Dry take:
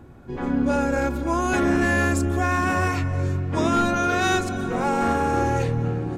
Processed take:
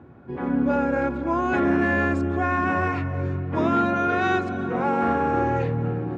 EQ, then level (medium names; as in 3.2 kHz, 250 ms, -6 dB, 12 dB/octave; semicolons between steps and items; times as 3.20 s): band-pass 100–2300 Hz; 0.0 dB